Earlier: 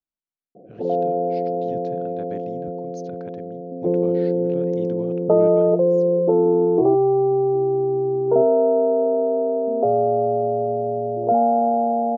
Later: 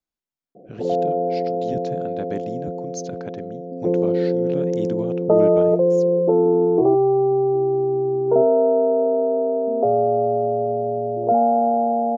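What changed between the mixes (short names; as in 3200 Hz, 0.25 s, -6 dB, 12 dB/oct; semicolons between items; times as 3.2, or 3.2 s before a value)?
speech +6.5 dB; master: remove air absorption 130 m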